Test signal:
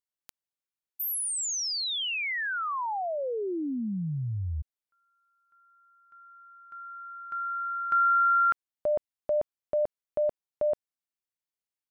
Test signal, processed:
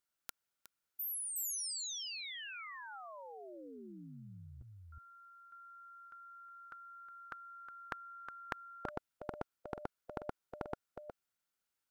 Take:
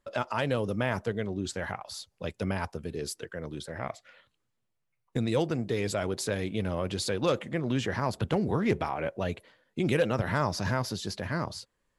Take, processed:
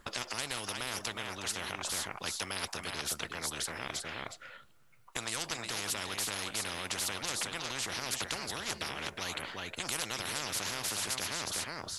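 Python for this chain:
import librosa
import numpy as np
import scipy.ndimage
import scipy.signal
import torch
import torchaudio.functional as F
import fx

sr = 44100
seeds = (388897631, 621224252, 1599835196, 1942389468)

y = fx.peak_eq(x, sr, hz=1400.0, db=10.0, octaves=0.25)
y = y + 10.0 ** (-12.0 / 20.0) * np.pad(y, (int(364 * sr / 1000.0), 0))[:len(y)]
y = fx.spectral_comp(y, sr, ratio=10.0)
y = F.gain(torch.from_numpy(y), -4.5).numpy()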